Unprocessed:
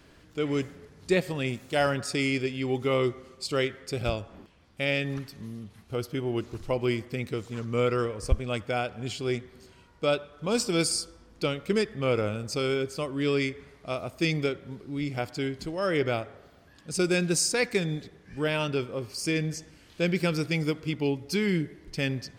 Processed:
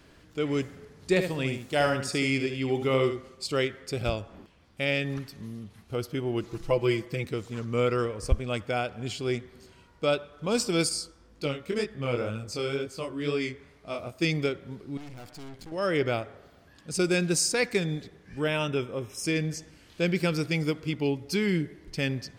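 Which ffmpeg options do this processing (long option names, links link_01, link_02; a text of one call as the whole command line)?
ffmpeg -i in.wav -filter_complex "[0:a]asettb=1/sr,asplit=3[link_01][link_02][link_03];[link_01]atrim=end=0.654[link_04];[link_02]atrim=start=0.65:end=3.29,asetpts=PTS-STARTPTS,afade=type=in:duration=0.004:curve=qsin,afade=type=out:start_time=2.636:duration=0.004:curve=qsin,aecho=1:1:75:0.398,atrim=end_sample=116424[link_05];[link_03]atrim=start=3.286[link_06];[link_04][link_05]acrossfade=duration=0.004:curve1=hsin:curve2=qsin[link_07];[link_07][link_06]acrossfade=duration=0.004:curve1=qsin:curve2=hsin,asettb=1/sr,asplit=3[link_08][link_09][link_10];[link_08]atrim=end=6.434[link_11];[link_09]atrim=start=6.43:end=7.25,asetpts=PTS-STARTPTS,afade=type=in:duration=0.004:curve=qsin,afade=type=out:start_time=0.816:duration=0.004:curve=qsin,aecho=1:1:6:0.65,atrim=end_sample=36162[link_12];[link_10]atrim=start=7.246[link_13];[link_11][link_12]acrossfade=duration=0.004:curve1=hsin:curve2=qsin[link_14];[link_14][link_13]acrossfade=duration=0.004:curve1=qsin:curve2=hsin,asettb=1/sr,asplit=3[link_15][link_16][link_17];[link_15]atrim=end=10.894[link_18];[link_16]atrim=start=10.89:end=14.22,asetpts=PTS-STARTPTS,afade=type=in:duration=0.004:curve=qsin,afade=type=out:start_time=3.326:duration=0.004:curve=qsin,flanger=delay=18.5:depth=6.6:speed=2[link_19];[link_17]atrim=start=14.216[link_20];[link_18][link_19]acrossfade=duration=0.004:curve1=hsin:curve2=qsin[link_21];[link_21][link_20]acrossfade=duration=0.004:curve1=qsin:curve2=hsin,asettb=1/sr,asplit=3[link_22][link_23][link_24];[link_22]atrim=end=14.974[link_25];[link_23]atrim=start=14.97:end=15.72,asetpts=PTS-STARTPTS,afade=type=in:duration=0.004:curve=qsin,afade=type=out:start_time=0.746:duration=0.004:curve=qsin,aeval=exprs='(tanh(126*val(0)+0.8)-tanh(0.8))/126':channel_layout=same[link_26];[link_24]atrim=start=15.716[link_27];[link_25][link_26]acrossfade=duration=0.004:curve1=hsin:curve2=qsin[link_28];[link_28][link_27]acrossfade=duration=0.004:curve1=qsin:curve2=hsin,asettb=1/sr,asplit=3[link_29][link_30][link_31];[link_29]atrim=end=18.404[link_32];[link_30]atrim=start=18.4:end=19.24,asetpts=PTS-STARTPTS,afade=type=in:duration=0.004:curve=qsin,afade=type=out:start_time=0.836:duration=0.004:curve=qsin,asuperstop=centerf=4500:order=20:qfactor=4.6[link_33];[link_31]atrim=start=19.236[link_34];[link_32][link_33]acrossfade=duration=0.004:curve1=hsin:curve2=qsin[link_35];[link_35][link_34]acrossfade=duration=0.004:curve1=qsin:curve2=hsin" out.wav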